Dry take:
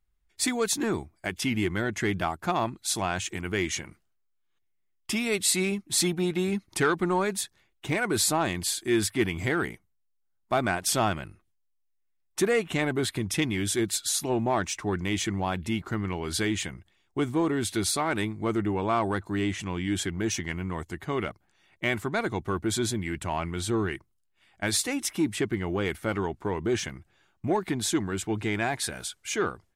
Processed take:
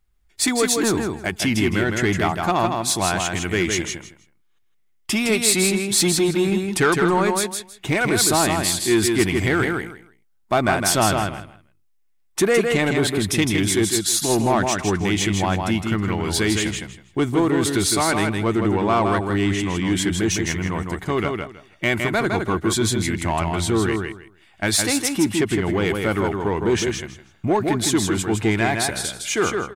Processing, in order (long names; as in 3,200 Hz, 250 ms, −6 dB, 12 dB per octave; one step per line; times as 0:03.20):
repeating echo 160 ms, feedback 19%, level −5 dB
in parallel at −8 dB: hard clipping −25.5 dBFS, distortion −10 dB
on the sum: level +4.5 dB